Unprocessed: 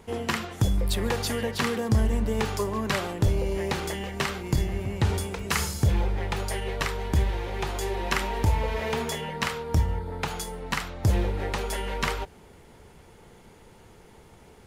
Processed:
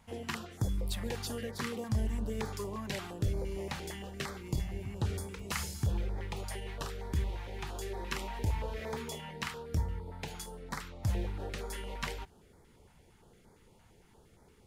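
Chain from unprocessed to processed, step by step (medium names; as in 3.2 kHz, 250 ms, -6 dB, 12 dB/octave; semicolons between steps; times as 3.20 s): step-sequenced notch 8.7 Hz 400–2800 Hz; trim -9 dB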